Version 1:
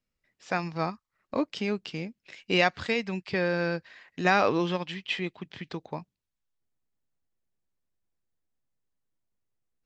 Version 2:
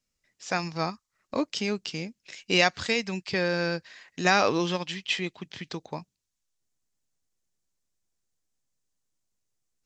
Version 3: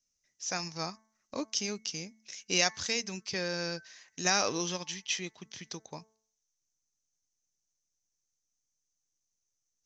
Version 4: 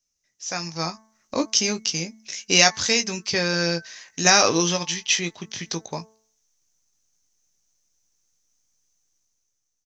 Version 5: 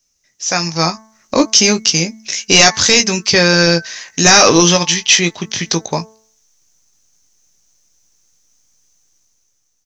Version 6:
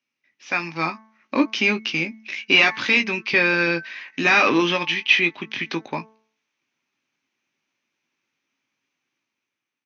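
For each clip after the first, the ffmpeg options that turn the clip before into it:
-af "equalizer=f=6.6k:w=0.92:g=12.5"
-af "lowpass=f=6.1k:t=q:w=9.1,bandreject=f=220:t=h:w=4,bandreject=f=440:t=h:w=4,bandreject=f=660:t=h:w=4,bandreject=f=880:t=h:w=4,bandreject=f=1.1k:t=h:w=4,bandreject=f=1.32k:t=h:w=4,bandreject=f=1.54k:t=h:w=4,bandreject=f=1.76k:t=h:w=4,bandreject=f=1.98k:t=h:w=4,bandreject=f=2.2k:t=h:w=4,volume=-8.5dB"
-filter_complex "[0:a]dynaudnorm=f=340:g=5:m=9.5dB,asplit=2[a][b];[b]adelay=18,volume=-8dB[c];[a][c]amix=inputs=2:normalize=0,volume=2.5dB"
-af "apsyclip=14dB,volume=-1.5dB"
-filter_complex "[0:a]asplit=2[a][b];[b]asoftclip=type=tanh:threshold=-11.5dB,volume=-8dB[c];[a][c]amix=inputs=2:normalize=0,highpass=f=160:w=0.5412,highpass=f=160:w=1.3066,equalizer=f=180:t=q:w=4:g=-9,equalizer=f=260:t=q:w=4:g=4,equalizer=f=470:t=q:w=4:g=-7,equalizer=f=680:t=q:w=4:g=-7,equalizer=f=2.4k:t=q:w=4:g=8,lowpass=f=3.2k:w=0.5412,lowpass=f=3.2k:w=1.3066,volume=-8dB"

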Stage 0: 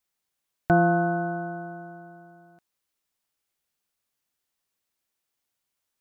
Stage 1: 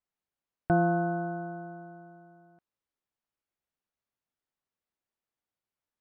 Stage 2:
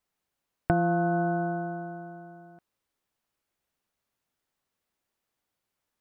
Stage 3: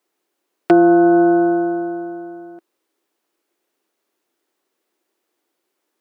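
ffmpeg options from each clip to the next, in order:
-af "lowpass=f=1.3k:p=1,volume=-4dB"
-af "acompressor=threshold=-30dB:ratio=6,volume=8.5dB"
-af "aeval=exprs='0.2*(abs(mod(val(0)/0.2+3,4)-2)-1)':c=same,highpass=f=340:t=q:w=3.9,volume=8dB"

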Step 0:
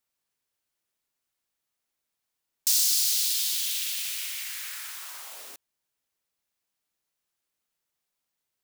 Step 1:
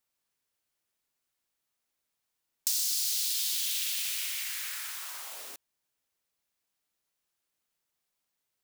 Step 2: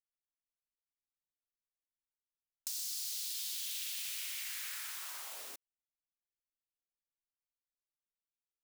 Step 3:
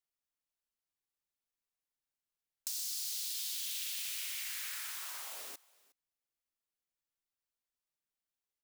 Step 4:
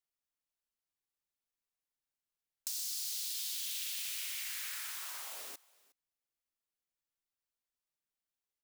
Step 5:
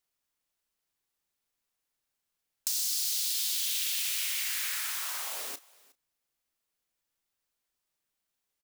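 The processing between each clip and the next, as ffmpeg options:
-af "acompressor=threshold=-27dB:ratio=4"
-af "anlmdn=0.0398,acompressor=threshold=-34dB:ratio=3,asoftclip=type=tanh:threshold=-24dB,volume=-3.5dB"
-af "aecho=1:1:363:0.0668,volume=1dB"
-af anull
-filter_complex "[0:a]asplit=2[a][b];[b]adelay=32,volume=-13.5dB[c];[a][c]amix=inputs=2:normalize=0,volume=8dB"

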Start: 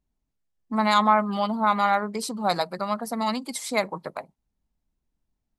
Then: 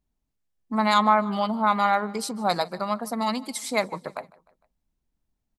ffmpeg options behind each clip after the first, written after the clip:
-af "aecho=1:1:152|304|456:0.075|0.0367|0.018"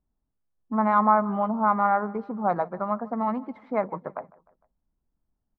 -af "lowpass=f=1.5k:w=0.5412,lowpass=f=1.5k:w=1.3066"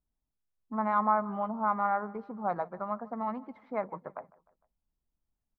-af "equalizer=f=250:w=0.62:g=-3,volume=-6dB"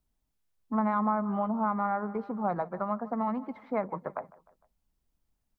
-filter_complex "[0:a]acrossover=split=350[a][b];[b]acompressor=threshold=-37dB:ratio=2.5[c];[a][c]amix=inputs=2:normalize=0,volume=6.5dB"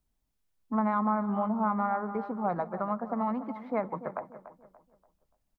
-filter_complex "[0:a]asplit=2[a][b];[b]adelay=289,lowpass=f=2.1k:p=1,volume=-13dB,asplit=2[c][d];[d]adelay=289,lowpass=f=2.1k:p=1,volume=0.37,asplit=2[e][f];[f]adelay=289,lowpass=f=2.1k:p=1,volume=0.37,asplit=2[g][h];[h]adelay=289,lowpass=f=2.1k:p=1,volume=0.37[i];[a][c][e][g][i]amix=inputs=5:normalize=0"

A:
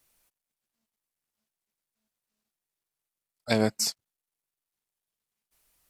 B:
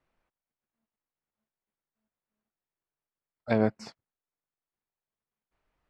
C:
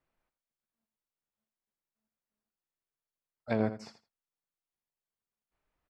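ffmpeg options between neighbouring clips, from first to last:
-af "lowpass=1.7k"
-af "aecho=1:1:82|164:0.251|0.0377,volume=-5dB"

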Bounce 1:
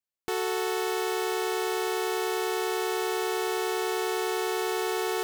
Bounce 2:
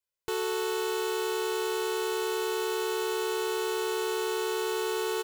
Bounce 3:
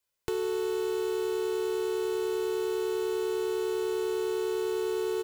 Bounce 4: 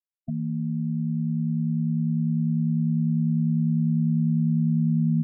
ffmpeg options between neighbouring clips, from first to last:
-filter_complex "[0:a]aecho=1:1:2:0.76,asplit=2[a][b];[b]alimiter=level_in=1.5dB:limit=-24dB:level=0:latency=1:release=21,volume=-1.5dB,volume=2.5dB[c];[a][c]amix=inputs=2:normalize=0,volume=-8dB"
-filter_complex "[0:a]acrossover=split=380[a][b];[b]acompressor=threshold=-45dB:ratio=8[c];[a][c]amix=inputs=2:normalize=0,volume=7dB"
-af "afftfilt=real='re*gte(hypot(re,im),0.0631)':imag='im*gte(hypot(re,im),0.0631)':win_size=1024:overlap=0.75,highpass=f=200:t=q:w=0.5412,highpass=f=200:t=q:w=1.307,lowpass=f=2.1k:t=q:w=0.5176,lowpass=f=2.1k:t=q:w=0.7071,lowpass=f=2.1k:t=q:w=1.932,afreqshift=-210,asubboost=boost=4.5:cutoff=200,volume=1.5dB"

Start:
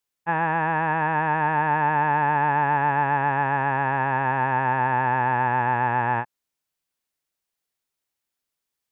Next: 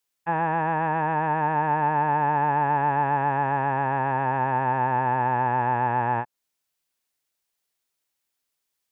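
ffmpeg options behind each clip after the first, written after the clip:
-filter_complex "[0:a]tiltshelf=f=910:g=-5.5,acrossover=split=850[a][b];[a]acontrast=50[c];[b]alimiter=level_in=1dB:limit=-24dB:level=0:latency=1:release=255,volume=-1dB[d];[c][d]amix=inputs=2:normalize=0,volume=-1.5dB"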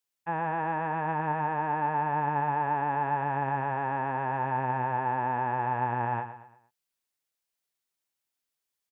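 -af "aecho=1:1:115|230|345|460:0.282|0.113|0.0451|0.018,volume=-6dB"

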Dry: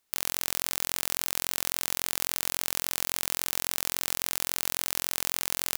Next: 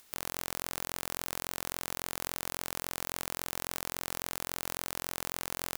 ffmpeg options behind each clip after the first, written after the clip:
-filter_complex "[0:a]acrossover=split=1600[a][b];[b]alimiter=limit=-12.5dB:level=0:latency=1[c];[a][c]amix=inputs=2:normalize=0,acompressor=mode=upward:threshold=-48dB:ratio=2.5"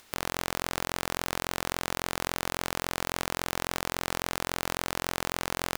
-af "highshelf=f=6.7k:g=-11.5,volume=8.5dB"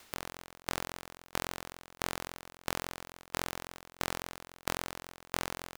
-af "aeval=exprs='val(0)*pow(10,-28*if(lt(mod(1.5*n/s,1),2*abs(1.5)/1000),1-mod(1.5*n/s,1)/(2*abs(1.5)/1000),(mod(1.5*n/s,1)-2*abs(1.5)/1000)/(1-2*abs(1.5)/1000))/20)':c=same,volume=1dB"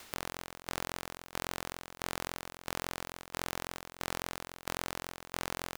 -af "alimiter=limit=-21.5dB:level=0:latency=1:release=300,volume=5.5dB"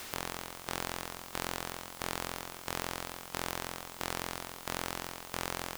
-af "aeval=exprs='val(0)+0.5*0.00794*sgn(val(0))':c=same"

